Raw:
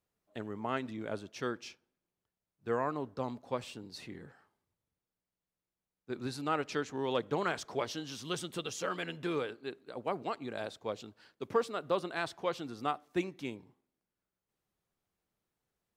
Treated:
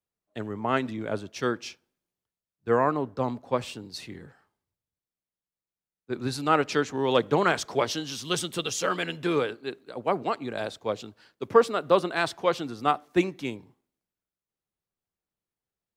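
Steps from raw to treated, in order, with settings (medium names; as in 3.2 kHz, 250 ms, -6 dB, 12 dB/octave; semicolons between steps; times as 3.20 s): three bands expanded up and down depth 40%; trim +9 dB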